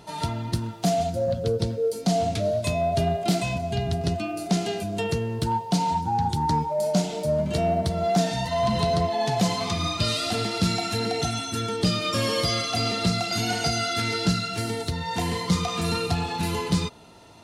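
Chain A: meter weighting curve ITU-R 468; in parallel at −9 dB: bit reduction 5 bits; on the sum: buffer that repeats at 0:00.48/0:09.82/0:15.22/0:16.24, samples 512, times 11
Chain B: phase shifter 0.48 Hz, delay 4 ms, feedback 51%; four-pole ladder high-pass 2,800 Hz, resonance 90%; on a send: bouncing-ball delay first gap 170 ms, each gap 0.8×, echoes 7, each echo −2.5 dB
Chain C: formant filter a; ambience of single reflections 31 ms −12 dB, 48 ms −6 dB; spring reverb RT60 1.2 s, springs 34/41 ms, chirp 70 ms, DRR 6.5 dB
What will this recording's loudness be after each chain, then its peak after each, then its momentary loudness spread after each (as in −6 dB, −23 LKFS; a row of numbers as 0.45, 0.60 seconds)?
−18.0, −29.0, −32.5 LKFS; −3.0, −14.0, −16.5 dBFS; 12, 13, 14 LU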